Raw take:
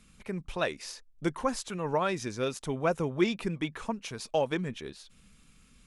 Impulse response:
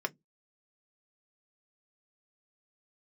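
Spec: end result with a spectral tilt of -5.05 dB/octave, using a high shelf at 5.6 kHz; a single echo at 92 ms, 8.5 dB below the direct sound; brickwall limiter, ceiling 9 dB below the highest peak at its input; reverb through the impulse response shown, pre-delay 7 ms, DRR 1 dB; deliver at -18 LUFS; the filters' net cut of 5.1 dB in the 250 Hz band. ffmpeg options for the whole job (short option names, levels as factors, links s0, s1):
-filter_complex "[0:a]equalizer=f=250:t=o:g=-8,highshelf=f=5600:g=-6,alimiter=level_in=1.12:limit=0.0631:level=0:latency=1,volume=0.891,aecho=1:1:92:0.376,asplit=2[s0][s1];[1:a]atrim=start_sample=2205,adelay=7[s2];[s1][s2]afir=irnorm=-1:irlink=0,volume=0.531[s3];[s0][s3]amix=inputs=2:normalize=0,volume=7.08"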